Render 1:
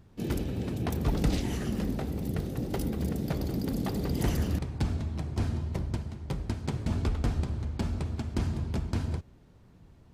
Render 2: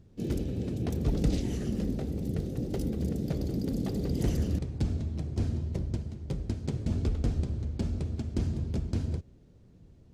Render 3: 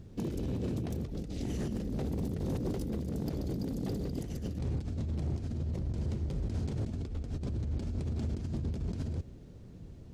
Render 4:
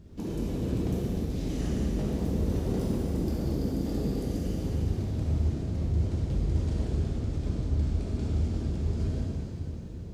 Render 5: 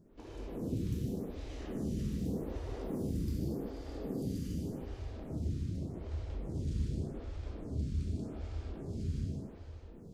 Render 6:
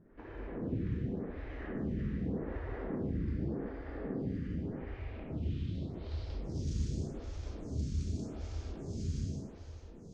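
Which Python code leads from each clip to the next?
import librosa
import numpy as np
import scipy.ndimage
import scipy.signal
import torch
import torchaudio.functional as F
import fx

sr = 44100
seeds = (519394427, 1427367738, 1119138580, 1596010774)

y1 = fx.curve_eq(x, sr, hz=(510.0, 940.0, 6600.0, 13000.0), db=(0, -11, -2, -9))
y2 = fx.over_compress(y1, sr, threshold_db=-36.0, ratio=-1.0)
y2 = np.clip(y2, -10.0 ** (-30.5 / 20.0), 10.0 ** (-30.5 / 20.0))
y2 = y2 * librosa.db_to_amplitude(2.0)
y3 = fx.rev_plate(y2, sr, seeds[0], rt60_s=3.7, hf_ratio=0.95, predelay_ms=0, drr_db=-7.5)
y3 = y3 * librosa.db_to_amplitude(-3.0)
y4 = y3 + 10.0 ** (-5.5 / 20.0) * np.pad(y3, (int(152 * sr / 1000.0), 0))[:len(y3)]
y4 = fx.stagger_phaser(y4, sr, hz=0.85)
y4 = y4 * librosa.db_to_amplitude(-5.5)
y5 = fx.filter_sweep_lowpass(y4, sr, from_hz=1800.0, to_hz=6400.0, start_s=4.7, end_s=6.79, q=3.2)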